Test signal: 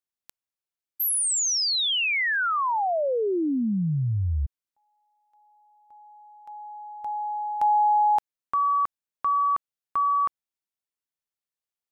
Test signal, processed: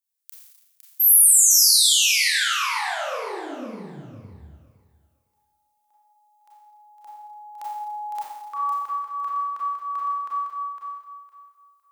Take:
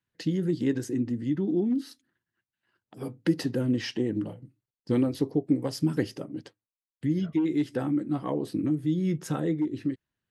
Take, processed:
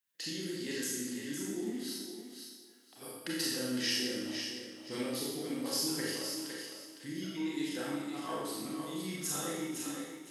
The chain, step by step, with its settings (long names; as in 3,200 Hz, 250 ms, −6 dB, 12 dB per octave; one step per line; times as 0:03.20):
spectral tilt +4.5 dB per octave
on a send: feedback echo with a high-pass in the loop 508 ms, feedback 22%, high-pass 330 Hz, level −6.5 dB
on the sum: four-comb reverb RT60 1.1 s, combs from 28 ms, DRR −5.5 dB
level −10 dB